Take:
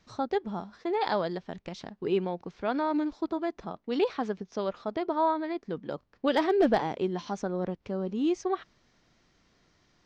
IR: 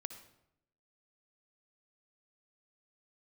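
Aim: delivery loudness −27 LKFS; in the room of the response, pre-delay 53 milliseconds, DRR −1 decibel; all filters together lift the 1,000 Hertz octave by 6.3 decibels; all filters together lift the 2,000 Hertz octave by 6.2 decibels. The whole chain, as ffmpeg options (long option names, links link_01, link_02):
-filter_complex "[0:a]equalizer=frequency=1000:width_type=o:gain=6.5,equalizer=frequency=2000:width_type=o:gain=5.5,asplit=2[link_01][link_02];[1:a]atrim=start_sample=2205,adelay=53[link_03];[link_02][link_03]afir=irnorm=-1:irlink=0,volume=4dB[link_04];[link_01][link_04]amix=inputs=2:normalize=0,volume=-3dB"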